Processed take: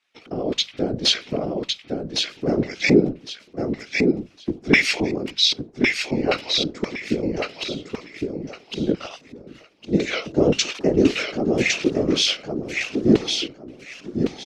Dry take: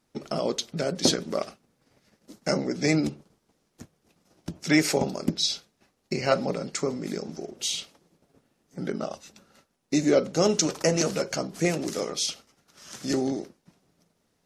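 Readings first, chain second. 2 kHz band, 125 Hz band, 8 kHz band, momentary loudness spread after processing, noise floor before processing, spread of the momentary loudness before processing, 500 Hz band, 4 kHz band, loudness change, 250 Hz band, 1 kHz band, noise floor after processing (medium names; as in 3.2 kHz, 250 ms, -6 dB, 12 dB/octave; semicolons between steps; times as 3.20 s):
+10.0 dB, +4.5 dB, -1.0 dB, 13 LU, -73 dBFS, 14 LU, +4.5 dB, +9.0 dB, +5.0 dB, +6.5 dB, +1.0 dB, -51 dBFS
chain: in parallel at +2.5 dB: compression, threshold -31 dBFS, peak gain reduction 15 dB; on the sum: dynamic bell 3.5 kHz, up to +6 dB, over -40 dBFS, Q 0.76; chorus 1.3 Hz, delay 15 ms, depth 4.3 ms; LFO band-pass square 1.9 Hz 300–2600 Hz; hum notches 50/100/150/200 Hz; on a send: feedback delay 1108 ms, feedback 23%, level -4 dB; on the sum: whisper effect; level rider gain up to 4 dB; trim +7 dB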